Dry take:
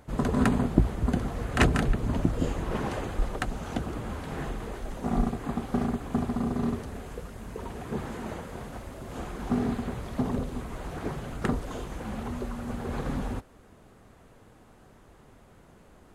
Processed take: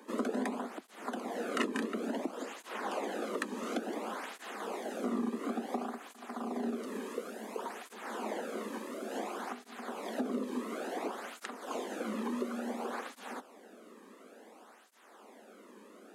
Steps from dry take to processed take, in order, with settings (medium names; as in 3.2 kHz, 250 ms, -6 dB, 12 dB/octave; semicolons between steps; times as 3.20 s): steep high-pass 200 Hz 96 dB/octave; compression 3:1, threshold -35 dBFS, peak gain reduction 13.5 dB; cancelling through-zero flanger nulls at 0.57 Hz, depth 1.5 ms; trim +4.5 dB